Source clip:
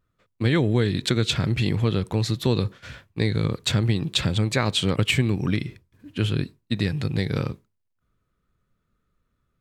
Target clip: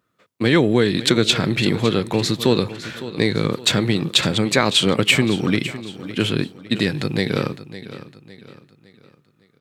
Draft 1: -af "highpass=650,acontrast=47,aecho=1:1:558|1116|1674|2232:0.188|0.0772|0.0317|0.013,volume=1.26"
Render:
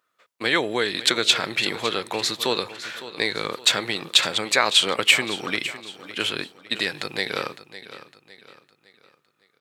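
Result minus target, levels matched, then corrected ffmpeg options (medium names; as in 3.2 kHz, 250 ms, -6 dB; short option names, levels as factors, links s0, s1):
250 Hz band -11.0 dB
-af "highpass=200,acontrast=47,aecho=1:1:558|1116|1674|2232:0.188|0.0772|0.0317|0.013,volume=1.26"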